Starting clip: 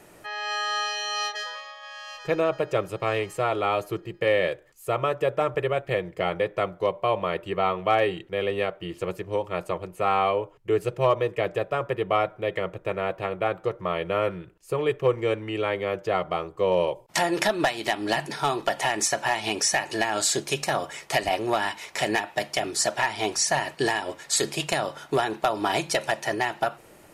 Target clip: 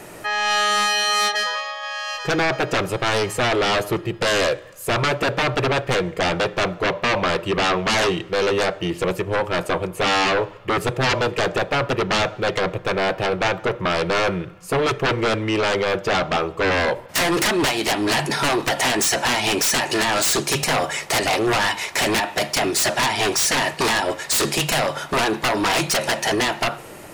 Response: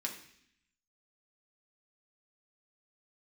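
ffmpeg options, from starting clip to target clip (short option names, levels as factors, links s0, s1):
-filter_complex "[0:a]aeval=exprs='0.282*sin(PI/2*4.47*val(0)/0.282)':c=same,asplit=2[s0][s1];[1:a]atrim=start_sample=2205,asetrate=22932,aresample=44100[s2];[s1][s2]afir=irnorm=-1:irlink=0,volume=0.1[s3];[s0][s3]amix=inputs=2:normalize=0,volume=0.531"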